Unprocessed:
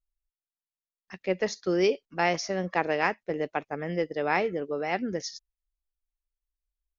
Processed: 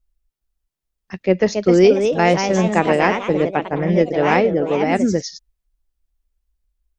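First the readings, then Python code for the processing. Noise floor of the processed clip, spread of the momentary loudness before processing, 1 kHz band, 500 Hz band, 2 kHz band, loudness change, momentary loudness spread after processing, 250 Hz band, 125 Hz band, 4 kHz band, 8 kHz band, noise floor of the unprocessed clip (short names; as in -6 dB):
-81 dBFS, 8 LU, +10.0 dB, +12.5 dB, +7.5 dB, +12.0 dB, 7 LU, +14.5 dB, +16.0 dB, +8.0 dB, n/a, under -85 dBFS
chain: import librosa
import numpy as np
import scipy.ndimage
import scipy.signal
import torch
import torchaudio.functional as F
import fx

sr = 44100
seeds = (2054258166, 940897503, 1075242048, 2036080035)

y = fx.echo_pitch(x, sr, ms=416, semitones=2, count=3, db_per_echo=-6.0)
y = fx.low_shelf(y, sr, hz=440.0, db=11.0)
y = F.gain(torch.from_numpy(y), 6.0).numpy()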